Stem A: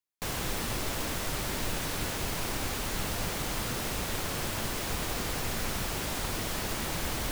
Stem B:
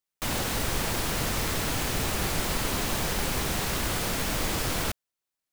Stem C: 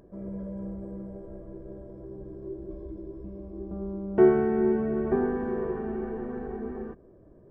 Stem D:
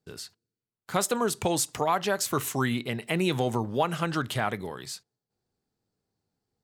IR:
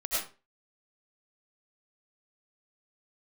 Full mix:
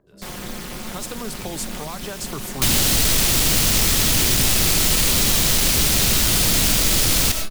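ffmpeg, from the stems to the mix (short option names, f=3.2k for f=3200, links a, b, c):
-filter_complex "[0:a]aecho=1:1:5.6:0.86,tremolo=f=220:d=0.947,volume=2dB[a];[1:a]aeval=exprs='0.2*sin(PI/2*3.16*val(0)/0.2)':c=same,adelay=2400,volume=3dB,asplit=2[b][c];[c]volume=-11dB[d];[2:a]lowpass=f=1.8k:t=q:w=1.6,volume=-9dB[e];[3:a]dynaudnorm=f=120:g=5:m=14dB,volume=-13.5dB[f];[4:a]atrim=start_sample=2205[g];[d][g]afir=irnorm=-1:irlink=0[h];[a][b][e][f][h]amix=inputs=5:normalize=0,acrossover=split=320|2700[i][j][k];[i]acompressor=threshold=-20dB:ratio=4[l];[j]acompressor=threshold=-33dB:ratio=4[m];[k]acompressor=threshold=-15dB:ratio=4[n];[l][m][n]amix=inputs=3:normalize=0"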